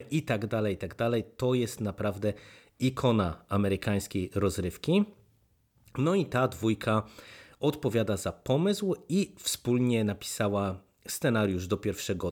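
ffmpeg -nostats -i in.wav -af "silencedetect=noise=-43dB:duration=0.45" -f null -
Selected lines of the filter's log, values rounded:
silence_start: 5.12
silence_end: 5.88 | silence_duration: 0.76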